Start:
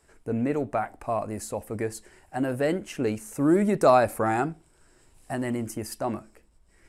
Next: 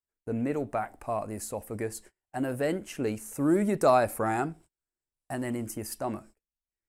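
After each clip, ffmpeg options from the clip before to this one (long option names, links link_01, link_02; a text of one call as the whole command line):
ffmpeg -i in.wav -af "agate=range=-34dB:threshold=-47dB:ratio=16:detection=peak,highshelf=frequency=12000:gain=11,volume=-3.5dB" out.wav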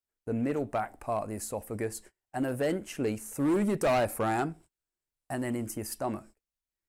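ffmpeg -i in.wav -af "asoftclip=type=hard:threshold=-22.5dB" out.wav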